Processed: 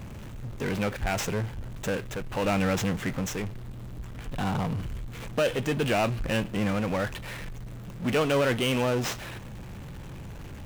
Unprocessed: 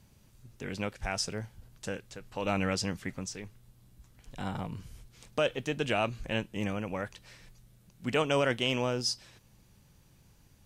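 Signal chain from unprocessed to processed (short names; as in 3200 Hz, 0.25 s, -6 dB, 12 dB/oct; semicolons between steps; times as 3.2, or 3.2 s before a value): median filter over 9 samples; power-law curve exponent 0.5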